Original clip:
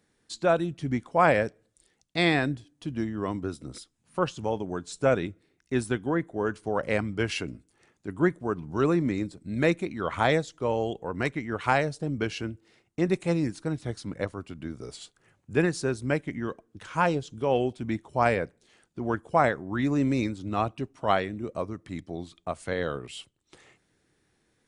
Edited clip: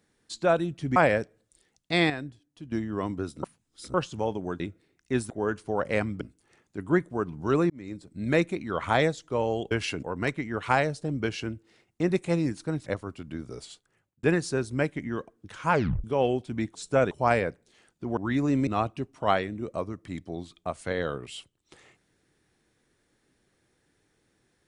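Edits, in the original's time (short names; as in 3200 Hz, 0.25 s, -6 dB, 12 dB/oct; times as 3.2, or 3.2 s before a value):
0.96–1.21 cut
2.35–2.97 gain -9 dB
3.68–4.19 reverse
4.85–5.21 move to 18.06
5.91–6.28 cut
7.19–7.51 move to 11.01
9–9.52 fade in linear
13.84–14.17 cut
14.87–15.54 fade out
17.03 tape stop 0.32 s
19.12–19.65 cut
20.15–20.48 cut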